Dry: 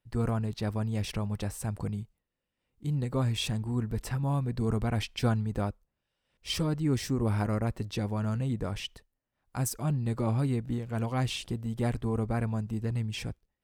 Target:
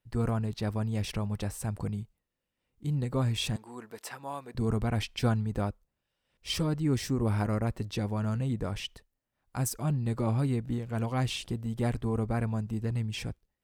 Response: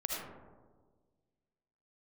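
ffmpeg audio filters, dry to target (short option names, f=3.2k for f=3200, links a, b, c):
-filter_complex "[0:a]asettb=1/sr,asplit=3[a][b][c];[a]atrim=end=3.564[d];[b]atrim=start=3.56:end=4.55,asetpts=PTS-STARTPTS,afade=t=in:d=0.004:c=qsin,afade=t=out:st=0.986:d=0.004:c=qsin,highpass=520[e];[c]atrim=start=4.546[f];[d][e]acrossfade=d=0.004:c1=hsin:c2=qsin[g];[g][f]acrossfade=d=0.004:c1=qsin:c2=hsin"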